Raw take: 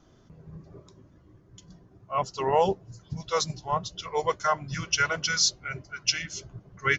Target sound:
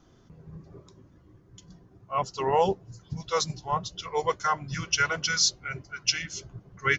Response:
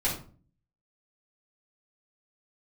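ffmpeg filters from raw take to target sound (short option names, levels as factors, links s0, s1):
-af "bandreject=f=620:w=12"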